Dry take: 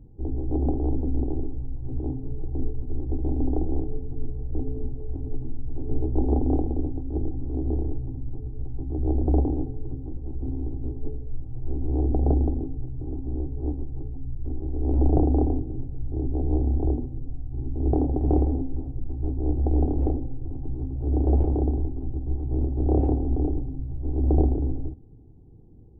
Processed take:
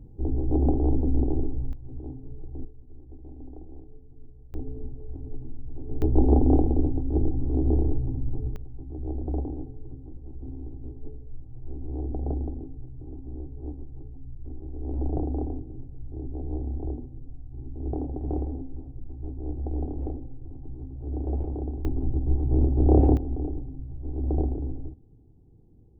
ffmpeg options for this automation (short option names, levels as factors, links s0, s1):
-af "asetnsamples=n=441:p=0,asendcmd='1.73 volume volume -8.5dB;2.65 volume volume -18dB;4.54 volume volume -6dB;6.02 volume volume 3.5dB;8.56 volume volume -8dB;21.85 volume volume 3.5dB;23.17 volume volume -5.5dB',volume=1.26"